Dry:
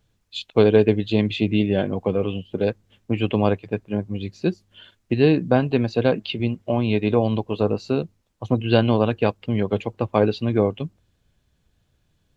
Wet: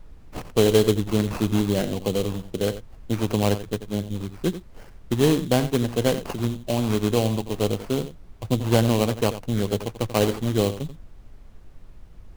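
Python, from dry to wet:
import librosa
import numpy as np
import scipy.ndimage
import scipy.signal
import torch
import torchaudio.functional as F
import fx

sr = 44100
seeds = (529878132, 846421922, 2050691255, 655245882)

y = fx.quant_float(x, sr, bits=2, at=(9.86, 10.54))
y = y + 10.0 ** (-12.5 / 20.0) * np.pad(y, (int(88 * sr / 1000.0), 0))[:len(y)]
y = fx.sample_hold(y, sr, seeds[0], rate_hz=3600.0, jitter_pct=20)
y = fx.dmg_noise_colour(y, sr, seeds[1], colour='brown', level_db=-45.0)
y = fx.low_shelf(y, sr, hz=64.0, db=7.5)
y = y * librosa.db_to_amplitude(-3.0)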